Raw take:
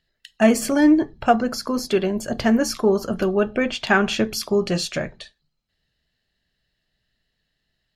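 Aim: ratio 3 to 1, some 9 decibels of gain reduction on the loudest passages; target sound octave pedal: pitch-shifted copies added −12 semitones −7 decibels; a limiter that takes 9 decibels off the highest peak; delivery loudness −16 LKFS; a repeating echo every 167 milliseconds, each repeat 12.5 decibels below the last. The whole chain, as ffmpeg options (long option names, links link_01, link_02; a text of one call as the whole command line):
ffmpeg -i in.wav -filter_complex "[0:a]acompressor=threshold=-23dB:ratio=3,alimiter=limit=-19.5dB:level=0:latency=1,aecho=1:1:167|334|501:0.237|0.0569|0.0137,asplit=2[link_01][link_02];[link_02]asetrate=22050,aresample=44100,atempo=2,volume=-7dB[link_03];[link_01][link_03]amix=inputs=2:normalize=0,volume=12dB" out.wav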